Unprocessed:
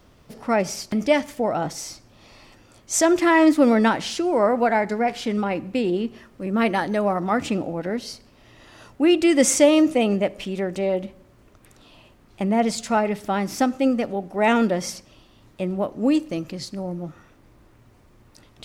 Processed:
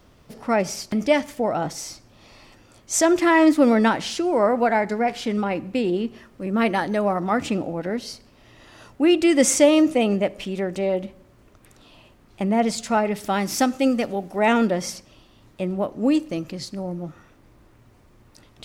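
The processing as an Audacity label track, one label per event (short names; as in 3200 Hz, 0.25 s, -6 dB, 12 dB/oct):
13.160000	14.390000	high shelf 2600 Hz +7.5 dB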